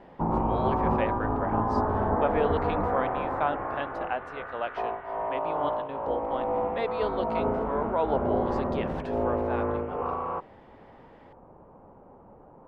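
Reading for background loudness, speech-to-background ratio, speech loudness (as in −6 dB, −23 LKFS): −29.5 LKFS, −4.5 dB, −34.0 LKFS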